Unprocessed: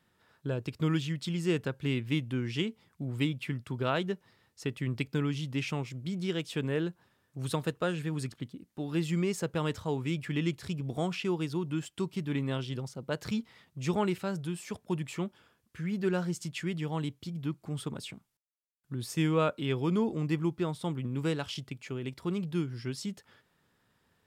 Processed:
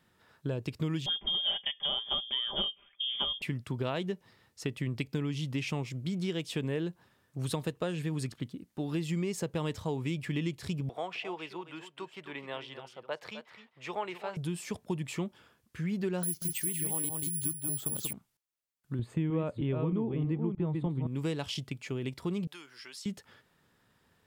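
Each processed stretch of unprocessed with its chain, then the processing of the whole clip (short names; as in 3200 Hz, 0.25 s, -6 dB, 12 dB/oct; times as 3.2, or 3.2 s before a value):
1.06–3.42 comb 5 ms, depth 74% + inverted band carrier 3400 Hz
10.89–14.37 three-band isolator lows -24 dB, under 500 Hz, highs -16 dB, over 3300 Hz + echo 0.259 s -12 dB
16.23–18.13 careless resampling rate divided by 4×, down filtered, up zero stuff + echo 0.186 s -5.5 dB
18.99–21.07 reverse delay 0.312 s, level -5.5 dB + running mean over 8 samples + tilt -2 dB/oct
22.47–23.06 HPF 960 Hz + compressor 4:1, threshold -45 dBFS
whole clip: dynamic EQ 1400 Hz, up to -7 dB, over -57 dBFS, Q 3.4; compressor 4:1, threshold -32 dBFS; gain +2.5 dB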